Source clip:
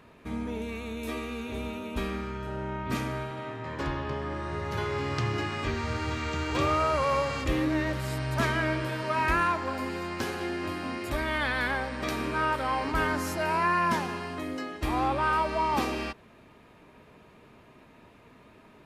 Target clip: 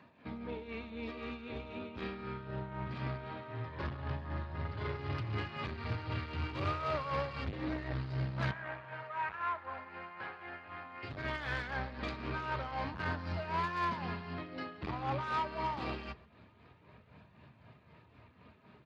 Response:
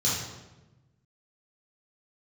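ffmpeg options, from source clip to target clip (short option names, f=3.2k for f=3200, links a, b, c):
-filter_complex "[0:a]asubboost=boost=5:cutoff=120,aresample=11025,aresample=44100,flanger=delay=1.1:depth=6.2:regen=-57:speed=0.23:shape=sinusoidal,asoftclip=type=tanh:threshold=-29dB,asettb=1/sr,asplit=3[a][b][c];[a]atrim=end=8.514[d];[b]atrim=start=8.51:end=11.03,asetpts=PTS-STARTPTS,afade=t=in:d=0.004:c=qsin,afade=t=out:st=2.516:d=0.004:c=qsin,acrossover=split=580 2600:gain=0.158 1 0.0631[e][f][g];[e][f][g]amix=inputs=3:normalize=0[h];[c]atrim=start=11.026[i];[d][h]acrossfade=d=0.004:c1=hsin:c2=qsin[j];[j][i]acrossfade=d=0.004:c1=qsin:c2=hsin,bandreject=f=50:t=h:w=6,bandreject=f=100:t=h:w=6,bandreject=f=150:t=h:w=6,tremolo=f=3.9:d=0.6,highpass=53,asplit=2[k][l];[l]adelay=133,lowpass=f=1.6k:p=1,volume=-20dB,asplit=2[m][n];[n]adelay=133,lowpass=f=1.6k:p=1,volume=0.25[o];[k][m][o]amix=inputs=3:normalize=0,volume=1dB" -ar 32000 -c:a libspeex -b:a 28k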